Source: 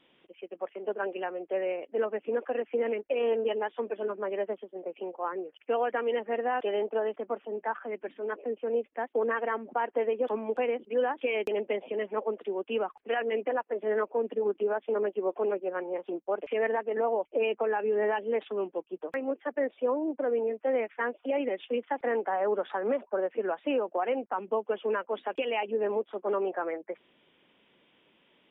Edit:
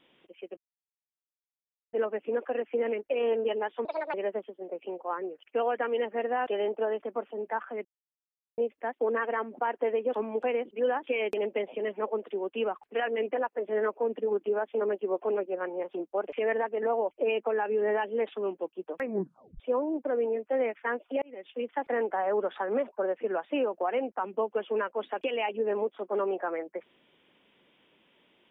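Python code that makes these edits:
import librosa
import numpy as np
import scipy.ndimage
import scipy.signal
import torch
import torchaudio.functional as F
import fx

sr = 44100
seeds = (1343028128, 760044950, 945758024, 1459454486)

y = fx.edit(x, sr, fx.silence(start_s=0.57, length_s=1.36),
    fx.speed_span(start_s=3.85, length_s=0.43, speed=1.49),
    fx.silence(start_s=7.99, length_s=0.73),
    fx.tape_stop(start_s=19.17, length_s=0.57),
    fx.fade_in_span(start_s=21.36, length_s=0.57), tone=tone)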